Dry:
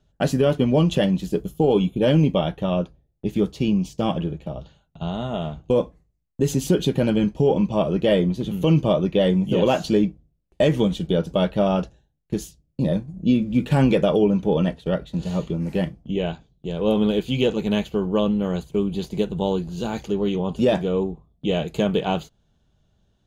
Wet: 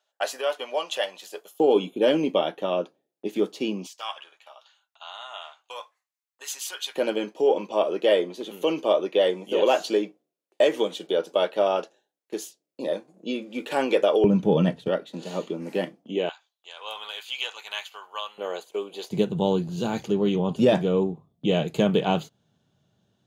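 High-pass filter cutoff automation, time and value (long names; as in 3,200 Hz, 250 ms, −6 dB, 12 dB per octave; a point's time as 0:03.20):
high-pass filter 24 dB per octave
630 Hz
from 0:01.60 290 Hz
from 0:03.87 1,000 Hz
from 0:06.96 360 Hz
from 0:14.24 120 Hz
from 0:14.88 260 Hz
from 0:16.29 960 Hz
from 0:18.38 450 Hz
from 0:19.11 110 Hz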